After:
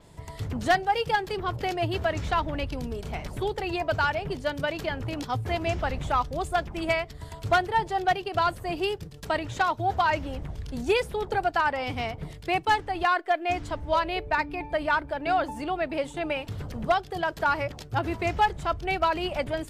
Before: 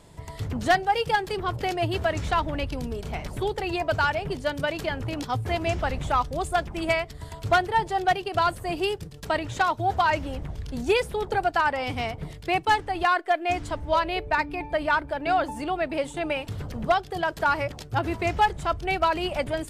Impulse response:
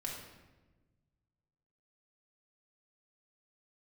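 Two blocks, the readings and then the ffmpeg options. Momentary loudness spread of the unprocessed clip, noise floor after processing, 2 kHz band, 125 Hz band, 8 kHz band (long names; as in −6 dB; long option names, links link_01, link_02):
8 LU, −44 dBFS, −1.5 dB, −1.5 dB, −3.5 dB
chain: -af "adynamicequalizer=threshold=0.00178:dfrequency=9200:dqfactor=1.5:tfrequency=9200:tqfactor=1.5:attack=5:release=100:ratio=0.375:range=3:mode=cutabove:tftype=bell,volume=-1.5dB"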